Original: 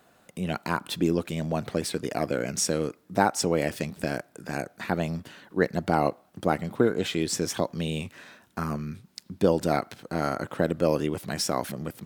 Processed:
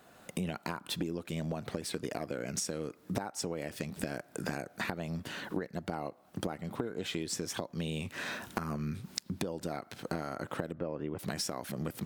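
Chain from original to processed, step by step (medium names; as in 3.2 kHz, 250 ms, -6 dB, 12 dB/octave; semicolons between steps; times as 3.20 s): recorder AGC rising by 17 dB/s; 10.72–11.19 s: low-pass 1.9 kHz 12 dB/octave; compression 12:1, threshold -32 dBFS, peak gain reduction 20 dB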